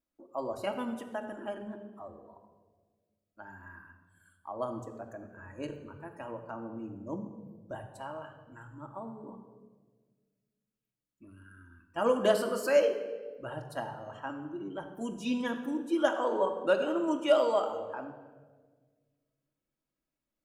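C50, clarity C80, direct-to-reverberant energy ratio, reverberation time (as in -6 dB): 9.0 dB, 10.0 dB, 2.5 dB, 1.5 s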